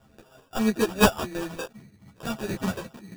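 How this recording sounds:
a buzz of ramps at a fixed pitch in blocks of 16 samples
phaser sweep stages 12, 1.7 Hz, lowest notch 250–1,100 Hz
aliases and images of a low sample rate 2,100 Hz, jitter 0%
a shimmering, thickened sound

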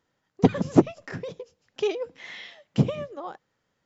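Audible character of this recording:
background noise floor −76 dBFS
spectral slope −7.0 dB per octave

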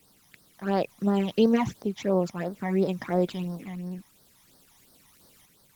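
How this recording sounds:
a quantiser's noise floor 10 bits, dither triangular
phaser sweep stages 12, 2.9 Hz, lowest notch 440–2,600 Hz
tremolo saw up 0.55 Hz, depth 40%
Opus

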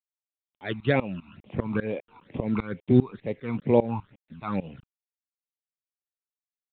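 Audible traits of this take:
tremolo saw up 5 Hz, depth 95%
a quantiser's noise floor 10 bits, dither none
phaser sweep stages 12, 2.2 Hz, lowest notch 530–1,500 Hz
mu-law

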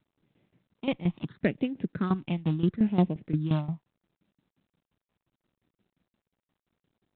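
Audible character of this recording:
a buzz of ramps at a fixed pitch in blocks of 8 samples
phaser sweep stages 6, 0.74 Hz, lowest notch 400–1,300 Hz
tremolo saw down 5.7 Hz, depth 80%
G.726

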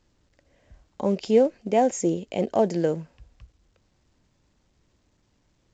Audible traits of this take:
A-law companding

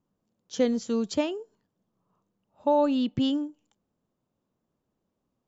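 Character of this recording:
background noise floor −81 dBFS
spectral slope −4.5 dB per octave

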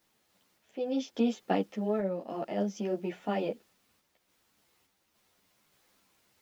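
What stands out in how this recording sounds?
a quantiser's noise floor 12 bits, dither triangular
sample-and-hold tremolo 3.5 Hz
a shimmering, thickened sound

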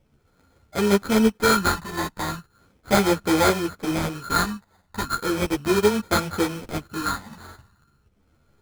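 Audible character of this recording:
a buzz of ramps at a fixed pitch in blocks of 32 samples
phaser sweep stages 8, 0.37 Hz, lowest notch 430–3,100 Hz
aliases and images of a low sample rate 2,800 Hz, jitter 0%
a shimmering, thickened sound

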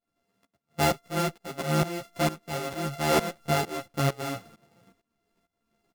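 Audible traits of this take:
a buzz of ramps at a fixed pitch in blocks of 64 samples
tremolo saw up 2.2 Hz, depth 90%
a shimmering, thickened sound

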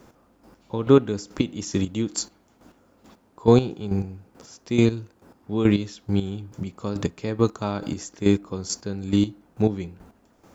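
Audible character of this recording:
a quantiser's noise floor 12 bits, dither none
chopped level 2.3 Hz, depth 65%, duty 25%

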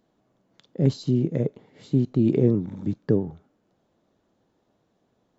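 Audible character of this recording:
background noise floor −71 dBFS
spectral slope −4.0 dB per octave

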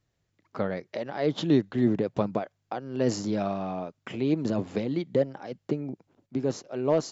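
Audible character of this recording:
background noise floor −77 dBFS
spectral slope −6.5 dB per octave

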